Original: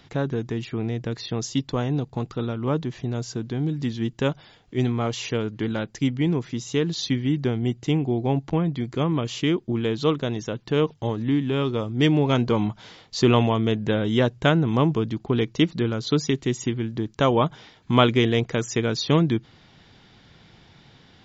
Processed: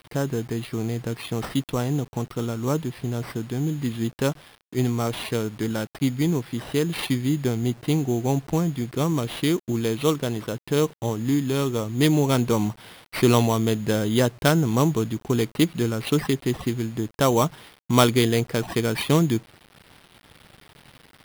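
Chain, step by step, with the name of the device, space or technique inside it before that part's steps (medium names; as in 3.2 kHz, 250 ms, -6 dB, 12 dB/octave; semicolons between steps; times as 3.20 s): early 8-bit sampler (sample-rate reducer 6.8 kHz, jitter 0%; bit crusher 8-bit)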